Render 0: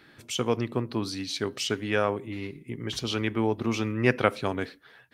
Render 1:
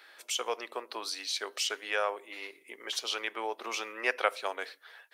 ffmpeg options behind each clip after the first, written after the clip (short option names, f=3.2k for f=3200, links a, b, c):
-filter_complex "[0:a]highpass=f=530:w=0.5412,highpass=f=530:w=1.3066,highshelf=f=5.4k:g=4.5,asplit=2[a][b];[b]acompressor=threshold=-38dB:ratio=6,volume=-2dB[c];[a][c]amix=inputs=2:normalize=0,volume=-4dB"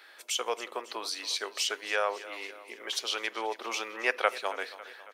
-af "aecho=1:1:275|550|825|1100|1375:0.15|0.0868|0.0503|0.0292|0.0169,volume=1.5dB"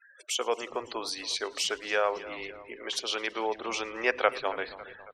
-filter_complex "[0:a]lowshelf=f=370:g=10.5,afftfilt=real='re*gte(hypot(re,im),0.00631)':imag='im*gte(hypot(re,im),0.00631)':win_size=1024:overlap=0.75,asplit=6[a][b][c][d][e][f];[b]adelay=110,afreqshift=-120,volume=-23.5dB[g];[c]adelay=220,afreqshift=-240,volume=-27.5dB[h];[d]adelay=330,afreqshift=-360,volume=-31.5dB[i];[e]adelay=440,afreqshift=-480,volume=-35.5dB[j];[f]adelay=550,afreqshift=-600,volume=-39.6dB[k];[a][g][h][i][j][k]amix=inputs=6:normalize=0"